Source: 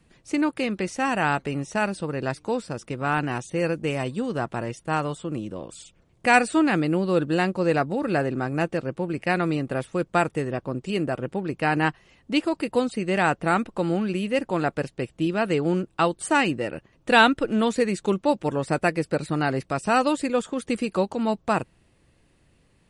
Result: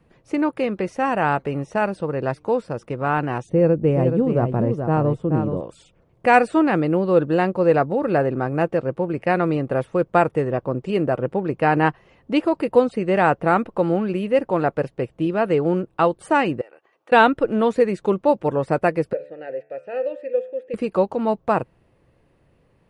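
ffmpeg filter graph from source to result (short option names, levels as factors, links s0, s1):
-filter_complex "[0:a]asettb=1/sr,asplit=3[s0][s1][s2];[s0]atrim=end=3.494[s3];[s1]atrim=start=3.49:end=5.61,asetpts=PTS-STARTPTS,afade=t=in:d=0.004:c=qsin,afade=t=out:st=2.116:d=0.004:c=qsin,tiltshelf=f=650:g=8.5,aecho=1:1:427:0.447,atrim=end_sample=93492[s4];[s2]atrim=start=5.606[s5];[s3][s4]acrossfade=d=0.004:c1=hsin:c2=qsin[s6];[s6][s5]acrossfade=d=0.004:c1=qsin:c2=hsin,asettb=1/sr,asplit=3[s7][s8][s9];[s7]atrim=end=16.614[s10];[s8]atrim=start=16.61:end=17.12,asetpts=PTS-STARTPTS,afade=t=in:d=0.004:c=qsin,afade=t=out:st=0.506:d=0.004:c=qsin,highpass=650,aecho=1:1:2.6:0.32,atrim=end_sample=22491,acompressor=threshold=0.00447:ratio=6:attack=3.2:release=140:knee=1:detection=peak[s11];[s9]atrim=start=17.116[s12];[s10][s11]acrossfade=d=0.004:c1=hsin:c2=qsin[s13];[s13][s12]acrossfade=d=0.004:c1=qsin:c2=hsin,asettb=1/sr,asplit=3[s14][s15][s16];[s14]atrim=end=19.134[s17];[s15]atrim=start=19.13:end=20.74,asetpts=PTS-STARTPTS,afade=t=in:d=0.004:c=qsin,afade=t=out:st=1.606:d=0.004:c=qsin,asplit=3[s18][s19][s20];[s18]bandpass=f=530:t=q:w=8,volume=1[s21];[s19]bandpass=f=1840:t=q:w=8,volume=0.501[s22];[s20]bandpass=f=2480:t=q:w=8,volume=0.355[s23];[s21][s22][s23]amix=inputs=3:normalize=0,bandreject=f=73.08:t=h:w=4,bandreject=f=146.16:t=h:w=4,bandreject=f=219.24:t=h:w=4,bandreject=f=292.32:t=h:w=4,bandreject=f=365.4:t=h:w=4,bandreject=f=438.48:t=h:w=4,bandreject=f=511.56:t=h:w=4,bandreject=f=584.64:t=h:w=4,bandreject=f=657.72:t=h:w=4,bandreject=f=730.8:t=h:w=4,bandreject=f=803.88:t=h:w=4,bandreject=f=876.96:t=h:w=4,bandreject=f=950.04:t=h:w=4,bandreject=f=1023.12:t=h:w=4,bandreject=f=1096.2:t=h:w=4,bandreject=f=1169.28:t=h:w=4,bandreject=f=1242.36:t=h:w=4,bandreject=f=1315.44:t=h:w=4,bandreject=f=1388.52:t=h:w=4,bandreject=f=1461.6:t=h:w=4,bandreject=f=1534.68:t=h:w=4,bandreject=f=1607.76:t=h:w=4,bandreject=f=1680.84:t=h:w=4,bandreject=f=1753.92:t=h:w=4,bandreject=f=1827:t=h:w=4,bandreject=f=1900.08:t=h:w=4,bandreject=f=1973.16:t=h:w=4,bandreject=f=2046.24:t=h:w=4,bandreject=f=2119.32:t=h:w=4,bandreject=f=2192.4:t=h:w=4,bandreject=f=2265.48:t=h:w=4,bandreject=f=2338.56:t=h:w=4,bandreject=f=2411.64:t=h:w=4,bandreject=f=2484.72:t=h:w=4,bandreject=f=2557.8:t=h:w=4,bandreject=f=2630.88:t=h:w=4,bandreject=f=2703.96:t=h:w=4[s24];[s16]atrim=start=20.736[s25];[s17][s24]acrossfade=d=0.004:c1=hsin:c2=qsin[s26];[s26][s25]acrossfade=d=0.004:c1=qsin:c2=hsin,equalizer=f=125:t=o:w=1:g=4,equalizer=f=500:t=o:w=1:g=7,equalizer=f=1000:t=o:w=1:g=4,equalizer=f=4000:t=o:w=1:g=-4,equalizer=f=8000:t=o:w=1:g=-11,dynaudnorm=f=390:g=21:m=3.76,volume=0.891"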